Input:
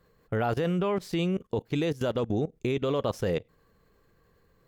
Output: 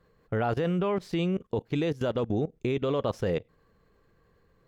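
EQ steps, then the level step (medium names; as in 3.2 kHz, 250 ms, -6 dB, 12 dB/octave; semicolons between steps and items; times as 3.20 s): treble shelf 6.8 kHz -11 dB; 0.0 dB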